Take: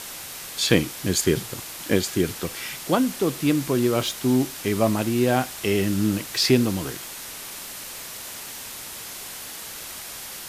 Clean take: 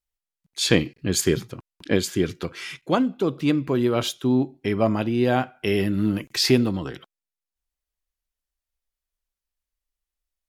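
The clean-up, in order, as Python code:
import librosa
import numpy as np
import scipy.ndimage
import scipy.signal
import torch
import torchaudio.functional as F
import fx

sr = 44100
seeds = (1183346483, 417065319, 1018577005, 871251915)

y = fx.noise_reduce(x, sr, print_start_s=7.06, print_end_s=7.56, reduce_db=30.0)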